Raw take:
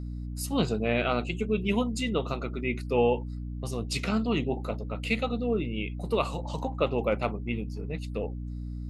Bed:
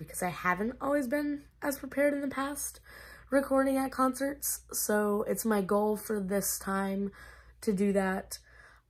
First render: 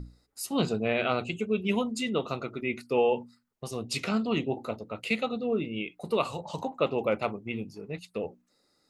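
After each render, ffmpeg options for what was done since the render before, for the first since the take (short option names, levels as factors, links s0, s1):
-af "bandreject=f=60:t=h:w=6,bandreject=f=120:t=h:w=6,bandreject=f=180:t=h:w=6,bandreject=f=240:t=h:w=6,bandreject=f=300:t=h:w=6"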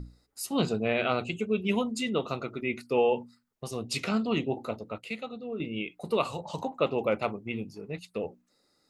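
-filter_complex "[0:a]asplit=3[s0][s1][s2];[s0]atrim=end=4.982[s3];[s1]atrim=start=4.978:end=5.602,asetpts=PTS-STARTPTS,volume=0.398[s4];[s2]atrim=start=5.598[s5];[s3][s4]acrossfade=d=0.004:c1=hsin:c2=hsin[s6];[s6][s5]acrossfade=d=0.004:c1=hsin:c2=hsin"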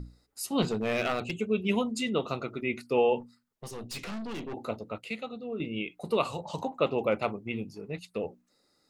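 -filter_complex "[0:a]asettb=1/sr,asplit=3[s0][s1][s2];[s0]atrim=end=0.624[s3];[s1]atrim=start=0.62:end=1.37,asetpts=PTS-STARTPTS,afade=t=in:d=0.004:c=qsin,afade=t=out:st=0.746:d=0.004:c=qsin,aeval=exprs='clip(val(0),-1,0.0596)':c=same[s4];[s2]atrim=start=1.366[s5];[s3][s4]acrossfade=d=0.004:c1=hsin:c2=qsin[s6];[s6][s5]acrossfade=d=0.004:c1=qsin:c2=hsin,asettb=1/sr,asplit=3[s7][s8][s9];[s7]atrim=end=3.204[s10];[s8]atrim=start=3.2:end=4.54,asetpts=PTS-STARTPTS,afade=t=in:d=0.004:c=qsin,afade=t=out:st=1.336:d=0.004:c=qsin,aeval=exprs='(tanh(56.2*val(0)+0.4)-tanh(0.4))/56.2':c=same[s11];[s9]atrim=start=4.536[s12];[s10][s11]acrossfade=d=0.004:c1=hsin:c2=qsin[s13];[s13][s12]acrossfade=d=0.004:c1=qsin:c2=hsin"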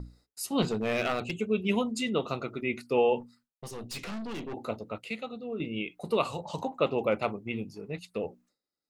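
-af "agate=range=0.0224:threshold=0.00158:ratio=3:detection=peak"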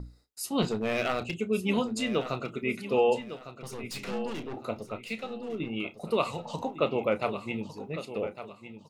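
-filter_complex "[0:a]asplit=2[s0][s1];[s1]adelay=31,volume=0.211[s2];[s0][s2]amix=inputs=2:normalize=0,asplit=2[s3][s4];[s4]aecho=0:1:1155|2310|3465:0.251|0.0728|0.0211[s5];[s3][s5]amix=inputs=2:normalize=0"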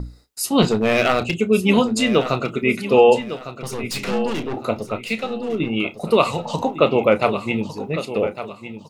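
-af "volume=3.76,alimiter=limit=0.794:level=0:latency=1"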